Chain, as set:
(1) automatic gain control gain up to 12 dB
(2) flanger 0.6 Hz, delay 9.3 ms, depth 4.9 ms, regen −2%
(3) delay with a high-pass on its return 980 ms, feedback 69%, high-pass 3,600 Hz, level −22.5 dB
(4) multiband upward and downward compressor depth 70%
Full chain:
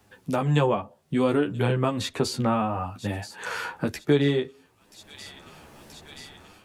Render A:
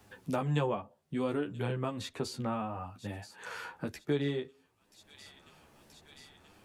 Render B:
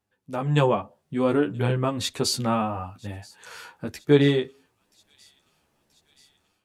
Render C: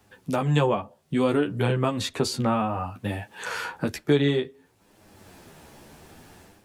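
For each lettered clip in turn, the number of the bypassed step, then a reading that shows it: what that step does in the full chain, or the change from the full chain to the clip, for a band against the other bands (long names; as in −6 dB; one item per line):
1, change in momentary loudness spread +1 LU
4, change in crest factor +2.0 dB
3, change in momentary loudness spread −10 LU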